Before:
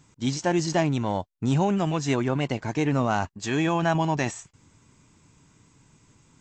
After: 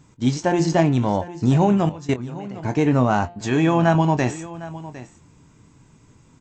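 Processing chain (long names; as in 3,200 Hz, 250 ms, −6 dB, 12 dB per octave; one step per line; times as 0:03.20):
tilt shelving filter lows +3.5 dB, about 1,500 Hz
hum removal 174.2 Hz, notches 27
0:01.89–0:02.64: output level in coarse steps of 20 dB
double-tracking delay 24 ms −12 dB
single-tap delay 757 ms −16.5 dB
level +3 dB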